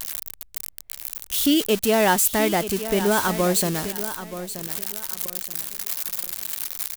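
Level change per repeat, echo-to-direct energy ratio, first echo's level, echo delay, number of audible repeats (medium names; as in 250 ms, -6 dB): -11.0 dB, -11.5 dB, -12.0 dB, 928 ms, 3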